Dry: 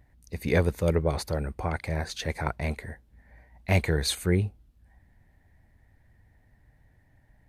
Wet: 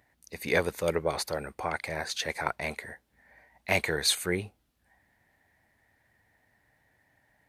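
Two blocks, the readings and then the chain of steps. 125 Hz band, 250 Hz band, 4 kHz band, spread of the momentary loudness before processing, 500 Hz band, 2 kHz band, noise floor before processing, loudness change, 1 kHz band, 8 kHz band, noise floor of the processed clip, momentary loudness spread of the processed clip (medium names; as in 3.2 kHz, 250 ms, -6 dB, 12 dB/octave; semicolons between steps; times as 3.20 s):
-13.0 dB, -7.0 dB, +3.5 dB, 11 LU, -1.5 dB, +3.0 dB, -63 dBFS, -2.0 dB, +1.0 dB, +3.5 dB, -73 dBFS, 16 LU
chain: high-pass 730 Hz 6 dB/octave; trim +3.5 dB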